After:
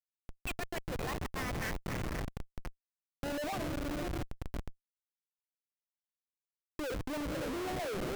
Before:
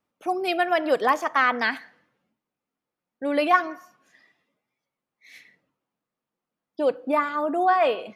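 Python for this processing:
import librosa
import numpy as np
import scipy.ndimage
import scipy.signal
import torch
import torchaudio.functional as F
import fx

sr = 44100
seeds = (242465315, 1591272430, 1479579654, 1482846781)

p1 = fx.reverse_delay(x, sr, ms=138, wet_db=-12.5)
p2 = fx.peak_eq(p1, sr, hz=1500.0, db=-11.0, octaves=2.2)
p3 = p2 + fx.echo_diffused(p2, sr, ms=549, feedback_pct=49, wet_db=-6, dry=0)
p4 = fx.filter_sweep_bandpass(p3, sr, from_hz=2300.0, to_hz=410.0, start_s=2.5, end_s=3.78, q=3.0)
p5 = fx.schmitt(p4, sr, flips_db=-40.0)
p6 = fx.peak_eq(p5, sr, hz=9400.0, db=-2.5, octaves=2.4)
p7 = fx.over_compress(p6, sr, threshold_db=-40.0, ratio=-0.5)
p8 = fx.record_warp(p7, sr, rpm=78.0, depth_cents=160.0)
y = p8 * librosa.db_to_amplitude(4.0)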